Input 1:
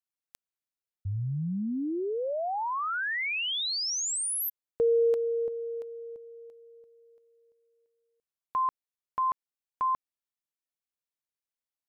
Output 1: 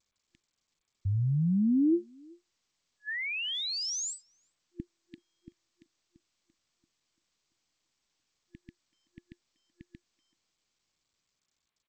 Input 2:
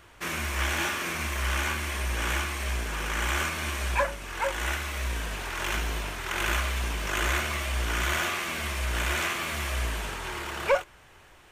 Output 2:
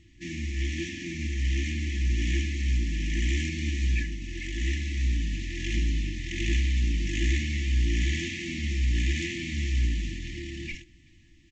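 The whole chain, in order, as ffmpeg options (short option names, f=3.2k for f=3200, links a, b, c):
-filter_complex "[0:a]asplit=2[a][b];[b]adelay=380,highpass=300,lowpass=3.4k,asoftclip=type=hard:threshold=-24.5dB,volume=-25dB[c];[a][c]amix=inputs=2:normalize=0,dynaudnorm=f=150:g=21:m=4dB,lowshelf=f=540:t=q:w=1.5:g=9,afftfilt=real='re*(1-between(b*sr/4096,350,1700))':imag='im*(1-between(b*sr/4096,350,1700))':win_size=4096:overlap=0.75,volume=-7dB" -ar 16000 -c:a g722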